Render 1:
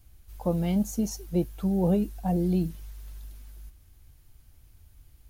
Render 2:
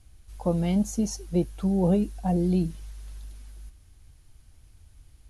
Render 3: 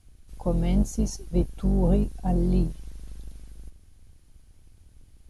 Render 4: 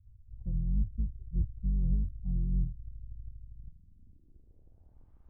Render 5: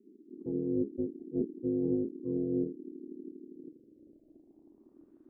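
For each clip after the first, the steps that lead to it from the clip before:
elliptic low-pass 11000 Hz, stop band 60 dB; gain +2.5 dB
octaver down 2 oct, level +2 dB; gain -2 dB
low-pass sweep 100 Hz -> 1100 Hz, 3.45–5.14; gain -6 dB
ring modulator 310 Hz

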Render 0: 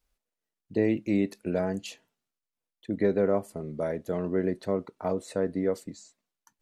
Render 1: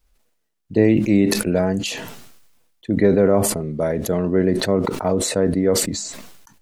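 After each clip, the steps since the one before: low shelf 120 Hz +7.5 dB; sustainer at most 44 dB/s; gain +8 dB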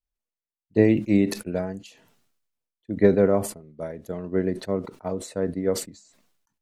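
upward expander 2.5:1, over -29 dBFS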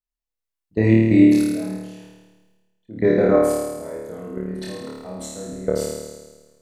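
level quantiser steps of 20 dB; on a send: flutter echo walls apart 4.6 m, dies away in 1.3 s; on the sum: gain +3 dB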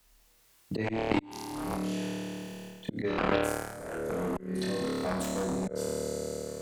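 auto swell 0.697 s; added harmonics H 3 -20 dB, 7 -17 dB, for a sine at -10 dBFS; three-band squash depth 100%; gain +9 dB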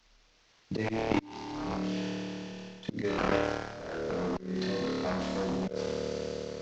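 CVSD 32 kbps

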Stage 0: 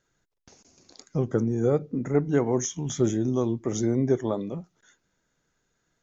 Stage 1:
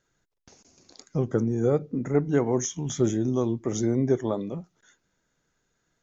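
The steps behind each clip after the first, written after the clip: nothing audible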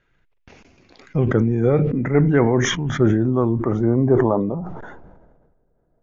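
low shelf 78 Hz +11.5 dB; low-pass sweep 2500 Hz -> 630 Hz, 1.65–5.65; sustainer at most 36 dB/s; gain +4 dB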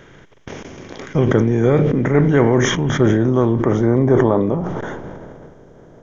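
per-bin compression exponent 0.6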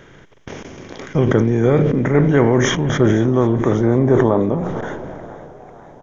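frequency-shifting echo 0.496 s, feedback 51%, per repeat +120 Hz, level -19 dB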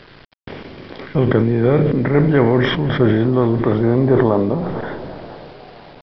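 bit-crush 7-bit; downsampling 11025 Hz

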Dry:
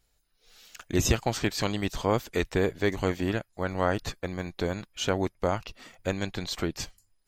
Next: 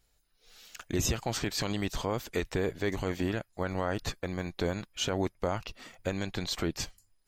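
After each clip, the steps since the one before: limiter -19 dBFS, peak gain reduction 9 dB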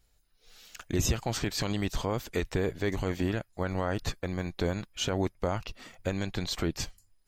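low shelf 160 Hz +4.5 dB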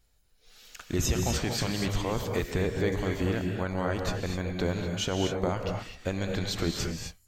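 non-linear reverb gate 0.28 s rising, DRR 2.5 dB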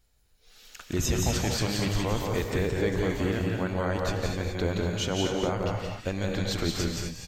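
echo 0.173 s -3.5 dB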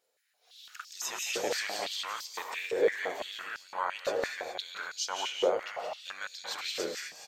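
stepped high-pass 5.9 Hz 500–4900 Hz; gain -5 dB

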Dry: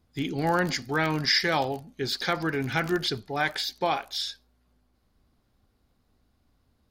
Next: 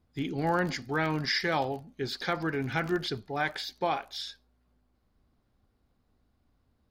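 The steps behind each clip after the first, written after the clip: high shelf 3600 Hz -7.5 dB; gain -2.5 dB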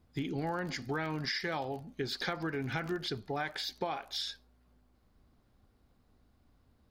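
compressor 6:1, threshold -36 dBFS, peak gain reduction 12.5 dB; gain +3.5 dB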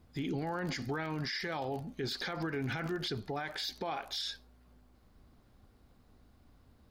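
limiter -33 dBFS, peak gain reduction 11.5 dB; gain +5 dB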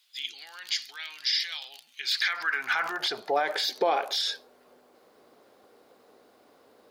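high-pass sweep 3300 Hz -> 460 Hz, 1.81–3.5; gain +9 dB

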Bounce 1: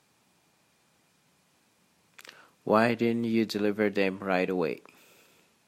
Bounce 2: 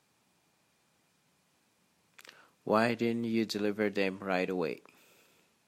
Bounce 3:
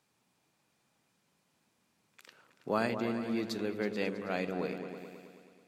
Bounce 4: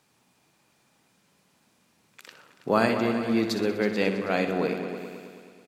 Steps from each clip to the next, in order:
dynamic EQ 6400 Hz, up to +5 dB, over -48 dBFS, Q 0.84; gain -4.5 dB
repeats that get brighter 0.108 s, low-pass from 400 Hz, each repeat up 2 oct, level -6 dB; gain -4 dB
feedback echo 62 ms, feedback 56%, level -10.5 dB; gain +8.5 dB

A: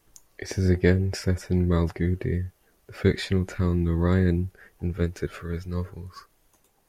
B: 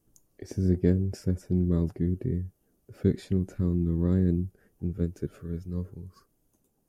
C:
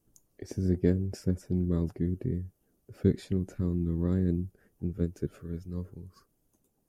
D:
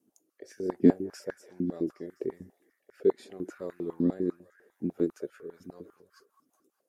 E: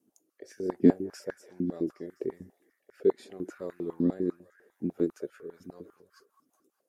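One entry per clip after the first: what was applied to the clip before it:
graphic EQ 125/250/1000/2000/4000 Hz +5/+8/-6/-10/-7 dB; gain -7.5 dB
harmonic-percussive split harmonic -4 dB
rotary speaker horn 0.75 Hz, later 5 Hz, at 5.16; delay with a stepping band-pass 0.204 s, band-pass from 940 Hz, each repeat 0.7 oct, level -11 dB; stepped high-pass 10 Hz 250–1600 Hz
short-mantissa float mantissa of 8-bit

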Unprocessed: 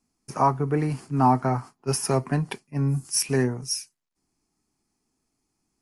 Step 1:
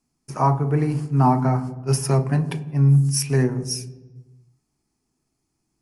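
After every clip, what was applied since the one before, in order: on a send at -10.5 dB: low shelf 130 Hz +5.5 dB + reverb RT60 1.2 s, pre-delay 3 ms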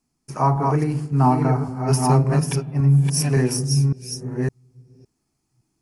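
reverse delay 0.561 s, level -3.5 dB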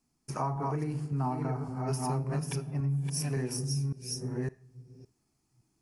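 compressor 3:1, threshold -30 dBFS, peak gain reduction 13.5 dB; Schroeder reverb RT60 0.54 s, combs from 26 ms, DRR 18.5 dB; gain -2.5 dB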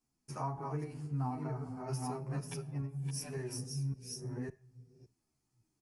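endless flanger 10.8 ms -2.6 Hz; gain -3.5 dB

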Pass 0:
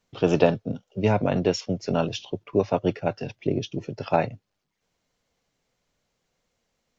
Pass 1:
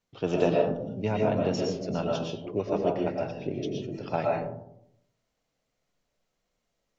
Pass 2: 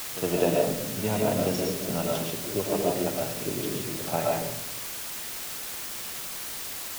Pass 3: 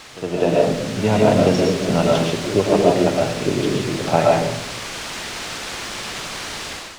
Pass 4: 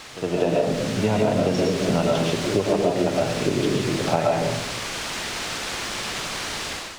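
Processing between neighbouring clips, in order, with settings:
reverb RT60 0.75 s, pre-delay 80 ms, DRR -1.5 dB; gain -8 dB
requantised 6-bit, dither triangular; pre-echo 61 ms -12.5 dB
AGC gain up to 12 dB; air absorption 100 m; gain +1.5 dB
compressor 5:1, threshold -17 dBFS, peak gain reduction 8.5 dB

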